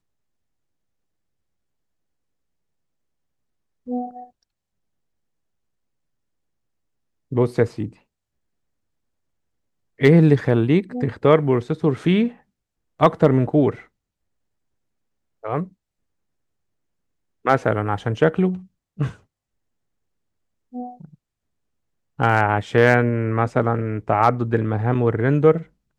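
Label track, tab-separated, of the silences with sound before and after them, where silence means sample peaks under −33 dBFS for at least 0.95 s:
4.240000	7.320000	silence
7.890000	10.000000	silence
13.800000	15.440000	silence
15.650000	17.450000	silence
19.120000	20.740000	silence
21.050000	22.190000	silence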